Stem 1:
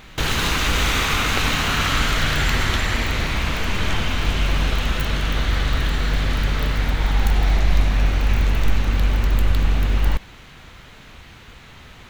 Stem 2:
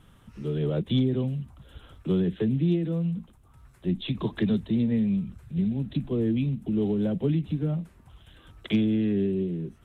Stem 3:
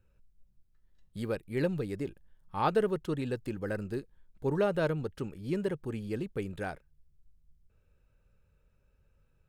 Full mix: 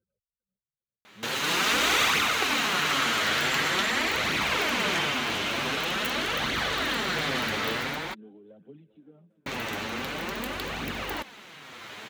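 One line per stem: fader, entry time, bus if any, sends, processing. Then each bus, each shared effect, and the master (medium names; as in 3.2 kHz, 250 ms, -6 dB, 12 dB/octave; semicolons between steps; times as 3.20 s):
-3.5 dB, 1.05 s, muted 8.14–9.46 s, no send, no echo send, level rider gain up to 11.5 dB
-17.0 dB, 1.45 s, no send, echo send -17.5 dB, treble shelf 2.8 kHz -10 dB
-0.5 dB, 0.00 s, no send, echo send -12 dB, spectral gate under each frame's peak -25 dB strong; compression, threshold -36 dBFS, peak gain reduction 13.5 dB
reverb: none
echo: feedback delay 398 ms, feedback 59%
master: high-pass 270 Hz 12 dB/octave; flange 0.46 Hz, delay 0.3 ms, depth 9.6 ms, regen +20%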